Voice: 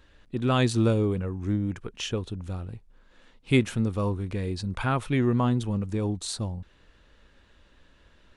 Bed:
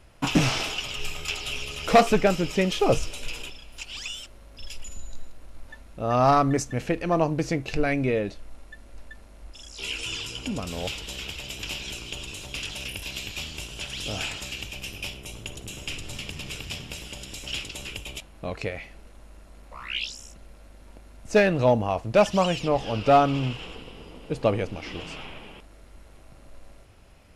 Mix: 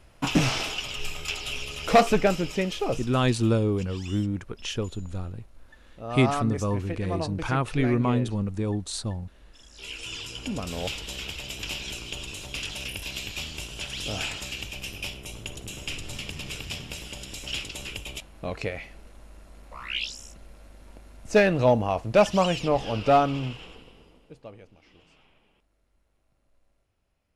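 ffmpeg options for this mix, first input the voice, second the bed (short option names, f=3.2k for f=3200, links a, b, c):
-filter_complex "[0:a]adelay=2650,volume=0dB[a];[1:a]volume=8dB,afade=t=out:st=2.29:d=0.75:silence=0.398107,afade=t=in:st=9.73:d=0.96:silence=0.354813,afade=t=out:st=22.83:d=1.58:silence=0.0841395[b];[a][b]amix=inputs=2:normalize=0"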